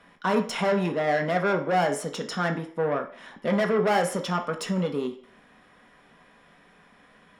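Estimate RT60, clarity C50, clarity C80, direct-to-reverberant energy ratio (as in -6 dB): 0.50 s, 10.5 dB, 15.0 dB, 3.5 dB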